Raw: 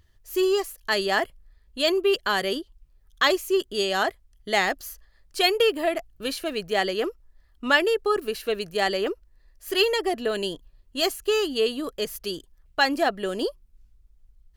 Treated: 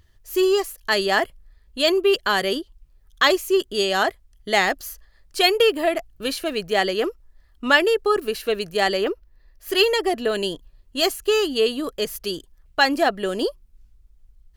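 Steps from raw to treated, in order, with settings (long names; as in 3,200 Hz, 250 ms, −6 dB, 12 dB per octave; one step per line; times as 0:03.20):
0:09.04–0:09.69: parametric band 8,200 Hz −7.5 dB 0.92 octaves
level +3.5 dB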